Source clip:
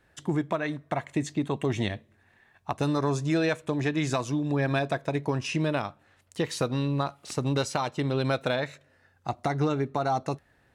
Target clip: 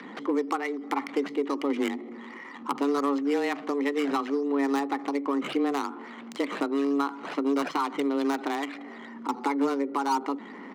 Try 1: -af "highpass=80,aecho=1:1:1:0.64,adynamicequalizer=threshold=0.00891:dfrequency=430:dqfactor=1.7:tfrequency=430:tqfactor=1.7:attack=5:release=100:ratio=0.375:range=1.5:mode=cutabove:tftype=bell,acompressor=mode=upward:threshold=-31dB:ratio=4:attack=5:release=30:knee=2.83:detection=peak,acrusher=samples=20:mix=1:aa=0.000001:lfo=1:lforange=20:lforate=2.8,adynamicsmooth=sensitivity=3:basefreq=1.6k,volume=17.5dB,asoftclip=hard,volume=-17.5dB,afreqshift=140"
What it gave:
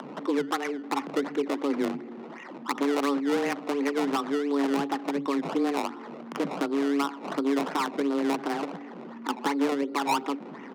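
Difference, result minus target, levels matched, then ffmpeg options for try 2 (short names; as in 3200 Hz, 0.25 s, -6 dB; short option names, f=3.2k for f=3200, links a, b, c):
decimation with a swept rate: distortion +7 dB
-af "highpass=80,aecho=1:1:1:0.64,adynamicequalizer=threshold=0.00891:dfrequency=430:dqfactor=1.7:tfrequency=430:tqfactor=1.7:attack=5:release=100:ratio=0.375:range=1.5:mode=cutabove:tftype=bell,acompressor=mode=upward:threshold=-31dB:ratio=4:attack=5:release=30:knee=2.83:detection=peak,acrusher=samples=6:mix=1:aa=0.000001:lfo=1:lforange=6:lforate=2.8,adynamicsmooth=sensitivity=3:basefreq=1.6k,volume=17.5dB,asoftclip=hard,volume=-17.5dB,afreqshift=140"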